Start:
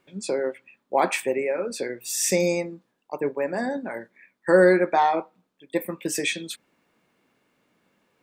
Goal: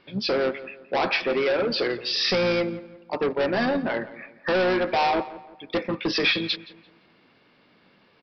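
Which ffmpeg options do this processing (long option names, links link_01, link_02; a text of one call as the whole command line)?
ffmpeg -i in.wav -filter_complex "[0:a]alimiter=limit=-13dB:level=0:latency=1:release=492,asplit=2[link_01][link_02];[link_02]asetrate=29433,aresample=44100,atempo=1.49831,volume=-12dB[link_03];[link_01][link_03]amix=inputs=2:normalize=0,aresample=11025,asoftclip=type=tanh:threshold=-27dB,aresample=44100,highshelf=frequency=4100:gain=10.5,asplit=2[link_04][link_05];[link_05]adelay=171,lowpass=frequency=2500:poles=1,volume=-16dB,asplit=2[link_06][link_07];[link_07]adelay=171,lowpass=frequency=2500:poles=1,volume=0.41,asplit=2[link_08][link_09];[link_09]adelay=171,lowpass=frequency=2500:poles=1,volume=0.41,asplit=2[link_10][link_11];[link_11]adelay=171,lowpass=frequency=2500:poles=1,volume=0.41[link_12];[link_04][link_06][link_08][link_10][link_12]amix=inputs=5:normalize=0,volume=7.5dB" out.wav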